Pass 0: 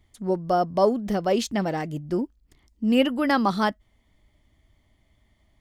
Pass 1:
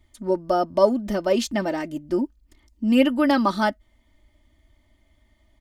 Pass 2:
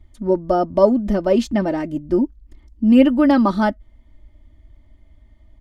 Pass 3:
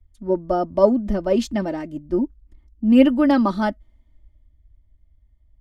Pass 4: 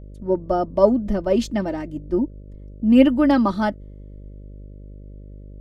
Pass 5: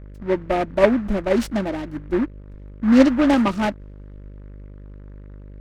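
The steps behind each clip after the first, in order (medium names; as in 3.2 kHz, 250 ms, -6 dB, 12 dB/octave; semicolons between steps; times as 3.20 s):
comb 3.3 ms, depth 70%
tilt EQ -2.5 dB/octave; trim +1.5 dB
three bands expanded up and down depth 40%; trim -3 dB
mains buzz 50 Hz, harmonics 12, -39 dBFS -7 dB/octave
delay time shaken by noise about 1.2 kHz, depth 0.069 ms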